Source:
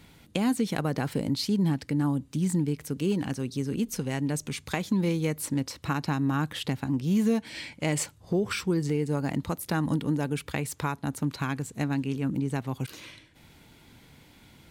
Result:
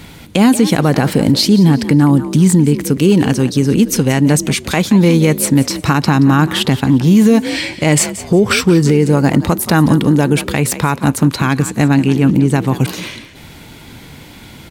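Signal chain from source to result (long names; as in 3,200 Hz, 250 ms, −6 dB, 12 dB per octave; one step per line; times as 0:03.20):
echo with shifted repeats 177 ms, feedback 31%, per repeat +47 Hz, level −15 dB
boost into a limiter +19 dB
level −1 dB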